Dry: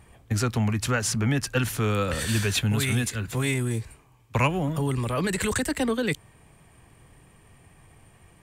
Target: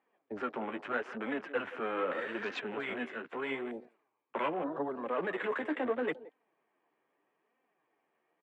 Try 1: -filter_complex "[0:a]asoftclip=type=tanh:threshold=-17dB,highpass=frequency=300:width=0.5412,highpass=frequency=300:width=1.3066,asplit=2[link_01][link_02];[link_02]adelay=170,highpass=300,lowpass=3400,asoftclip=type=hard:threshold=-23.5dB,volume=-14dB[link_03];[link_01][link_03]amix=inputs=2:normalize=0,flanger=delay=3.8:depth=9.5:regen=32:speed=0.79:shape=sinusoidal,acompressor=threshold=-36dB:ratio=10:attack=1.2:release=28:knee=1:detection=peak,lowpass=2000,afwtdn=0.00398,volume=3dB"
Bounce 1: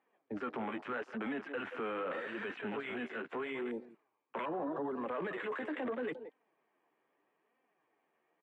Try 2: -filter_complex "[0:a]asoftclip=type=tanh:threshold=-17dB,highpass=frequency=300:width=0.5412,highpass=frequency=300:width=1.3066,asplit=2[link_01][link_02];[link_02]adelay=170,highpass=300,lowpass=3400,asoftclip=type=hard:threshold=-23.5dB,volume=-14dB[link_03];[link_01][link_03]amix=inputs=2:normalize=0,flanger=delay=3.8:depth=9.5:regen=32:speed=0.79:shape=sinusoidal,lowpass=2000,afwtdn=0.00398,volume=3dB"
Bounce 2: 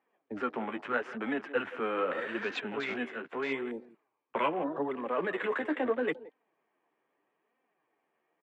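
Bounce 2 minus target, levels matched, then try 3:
soft clipping: distortion −8 dB
-filter_complex "[0:a]asoftclip=type=tanh:threshold=-24dB,highpass=frequency=300:width=0.5412,highpass=frequency=300:width=1.3066,asplit=2[link_01][link_02];[link_02]adelay=170,highpass=300,lowpass=3400,asoftclip=type=hard:threshold=-23.5dB,volume=-14dB[link_03];[link_01][link_03]amix=inputs=2:normalize=0,flanger=delay=3.8:depth=9.5:regen=32:speed=0.79:shape=sinusoidal,lowpass=2000,afwtdn=0.00398,volume=3dB"

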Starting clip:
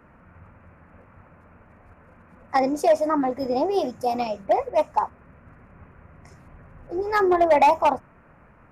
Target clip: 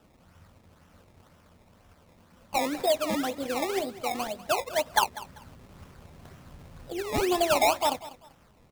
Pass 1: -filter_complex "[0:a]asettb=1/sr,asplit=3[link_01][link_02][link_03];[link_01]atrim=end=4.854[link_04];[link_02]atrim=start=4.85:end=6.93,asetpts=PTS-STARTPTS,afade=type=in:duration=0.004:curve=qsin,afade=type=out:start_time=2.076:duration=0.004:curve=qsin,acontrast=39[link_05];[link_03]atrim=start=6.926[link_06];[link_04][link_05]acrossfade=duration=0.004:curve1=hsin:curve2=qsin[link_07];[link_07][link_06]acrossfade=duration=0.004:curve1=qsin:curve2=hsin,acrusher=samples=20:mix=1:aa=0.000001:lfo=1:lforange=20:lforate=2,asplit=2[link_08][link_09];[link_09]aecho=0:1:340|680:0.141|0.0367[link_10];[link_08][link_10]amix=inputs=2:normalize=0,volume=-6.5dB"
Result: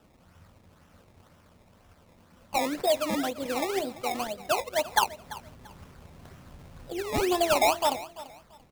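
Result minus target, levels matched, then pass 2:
echo 145 ms late
-filter_complex "[0:a]asettb=1/sr,asplit=3[link_01][link_02][link_03];[link_01]atrim=end=4.854[link_04];[link_02]atrim=start=4.85:end=6.93,asetpts=PTS-STARTPTS,afade=type=in:duration=0.004:curve=qsin,afade=type=out:start_time=2.076:duration=0.004:curve=qsin,acontrast=39[link_05];[link_03]atrim=start=6.926[link_06];[link_04][link_05]acrossfade=duration=0.004:curve1=hsin:curve2=qsin[link_07];[link_07][link_06]acrossfade=duration=0.004:curve1=qsin:curve2=hsin,acrusher=samples=20:mix=1:aa=0.000001:lfo=1:lforange=20:lforate=2,asplit=2[link_08][link_09];[link_09]aecho=0:1:195|390:0.141|0.0367[link_10];[link_08][link_10]amix=inputs=2:normalize=0,volume=-6.5dB"

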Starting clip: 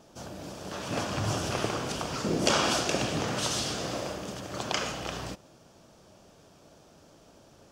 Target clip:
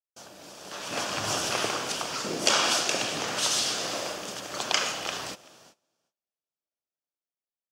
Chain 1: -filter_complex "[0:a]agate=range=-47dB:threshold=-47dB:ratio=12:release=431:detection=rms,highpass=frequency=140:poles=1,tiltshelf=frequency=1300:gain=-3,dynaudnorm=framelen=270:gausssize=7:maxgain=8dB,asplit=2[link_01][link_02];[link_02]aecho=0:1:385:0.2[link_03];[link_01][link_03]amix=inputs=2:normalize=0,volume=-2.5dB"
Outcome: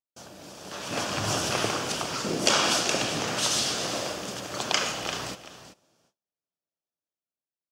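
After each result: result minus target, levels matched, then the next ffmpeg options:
125 Hz band +6.5 dB; echo-to-direct +10 dB
-filter_complex "[0:a]agate=range=-47dB:threshold=-47dB:ratio=12:release=431:detection=rms,highpass=frequency=420:poles=1,tiltshelf=frequency=1300:gain=-3,dynaudnorm=framelen=270:gausssize=7:maxgain=8dB,asplit=2[link_01][link_02];[link_02]aecho=0:1:385:0.2[link_03];[link_01][link_03]amix=inputs=2:normalize=0,volume=-2.5dB"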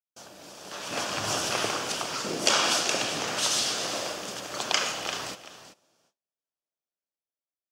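echo-to-direct +10 dB
-filter_complex "[0:a]agate=range=-47dB:threshold=-47dB:ratio=12:release=431:detection=rms,highpass=frequency=420:poles=1,tiltshelf=frequency=1300:gain=-3,dynaudnorm=framelen=270:gausssize=7:maxgain=8dB,asplit=2[link_01][link_02];[link_02]aecho=0:1:385:0.0631[link_03];[link_01][link_03]amix=inputs=2:normalize=0,volume=-2.5dB"

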